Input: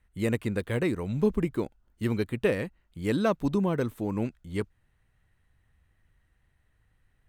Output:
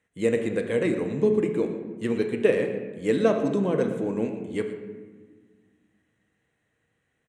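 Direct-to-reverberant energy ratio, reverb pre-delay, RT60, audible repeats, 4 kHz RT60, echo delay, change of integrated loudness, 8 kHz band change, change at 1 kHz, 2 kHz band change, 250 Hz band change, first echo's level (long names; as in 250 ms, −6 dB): 4.0 dB, 4 ms, 1.4 s, 1, 0.80 s, 116 ms, +4.0 dB, can't be measured, +0.5 dB, +2.0 dB, +2.5 dB, −15.5 dB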